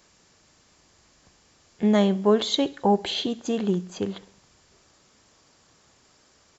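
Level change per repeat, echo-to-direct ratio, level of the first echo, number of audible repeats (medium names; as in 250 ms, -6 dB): -5.5 dB, -21.0 dB, -22.5 dB, 3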